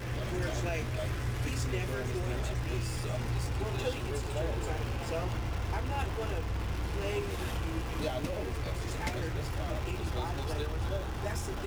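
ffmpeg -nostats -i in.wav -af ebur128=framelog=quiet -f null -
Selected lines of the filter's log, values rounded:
Integrated loudness:
  I:         -34.8 LUFS
  Threshold: -44.8 LUFS
Loudness range:
  LRA:         1.2 LU
  Threshold: -54.8 LUFS
  LRA low:   -35.4 LUFS
  LRA high:  -34.2 LUFS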